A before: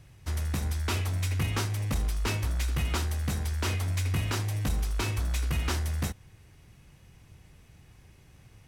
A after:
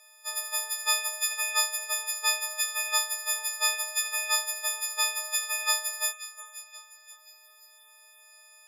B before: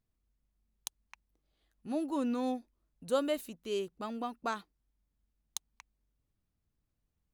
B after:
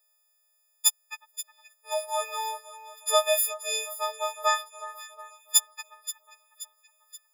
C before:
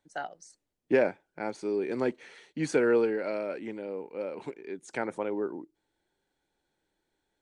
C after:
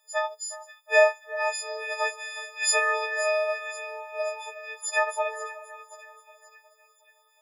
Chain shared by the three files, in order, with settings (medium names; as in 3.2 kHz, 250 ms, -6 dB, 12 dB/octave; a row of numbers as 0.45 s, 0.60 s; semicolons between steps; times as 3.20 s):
partials quantised in pitch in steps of 6 st; brick-wall FIR high-pass 460 Hz; two-band feedback delay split 1.8 kHz, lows 364 ms, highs 528 ms, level -14.5 dB; normalise loudness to -27 LUFS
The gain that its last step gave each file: -2.0 dB, +7.5 dB, +5.0 dB